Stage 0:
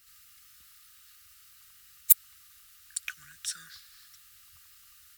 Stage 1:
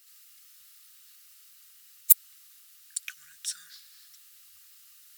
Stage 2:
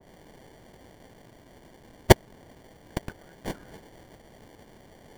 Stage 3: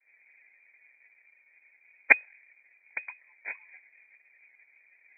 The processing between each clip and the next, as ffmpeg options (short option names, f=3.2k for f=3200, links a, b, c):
-af "tiltshelf=f=1.2k:g=-8.5,areverse,acompressor=mode=upward:threshold=-45dB:ratio=2.5,areverse,volume=-7dB"
-filter_complex "[0:a]acrossover=split=190|1600[a][b][c];[c]acrusher=samples=34:mix=1:aa=0.000001[d];[a][b][d]amix=inputs=3:normalize=0,adynamicequalizer=threshold=0.00282:dfrequency=2000:dqfactor=0.7:tfrequency=2000:tqfactor=0.7:attack=5:release=100:ratio=0.375:range=2:mode=cutabove:tftype=highshelf,volume=3dB"
-af "lowpass=f=2.1k:t=q:w=0.5098,lowpass=f=2.1k:t=q:w=0.6013,lowpass=f=2.1k:t=q:w=0.9,lowpass=f=2.1k:t=q:w=2.563,afreqshift=-2500,afftdn=nr=15:nf=-44,volume=-4dB"